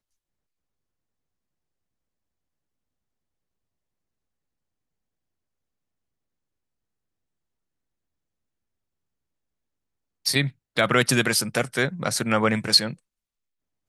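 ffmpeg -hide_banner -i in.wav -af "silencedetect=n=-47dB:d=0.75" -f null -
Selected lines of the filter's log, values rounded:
silence_start: 0.00
silence_end: 10.25 | silence_duration: 10.25
silence_start: 12.95
silence_end: 13.88 | silence_duration: 0.93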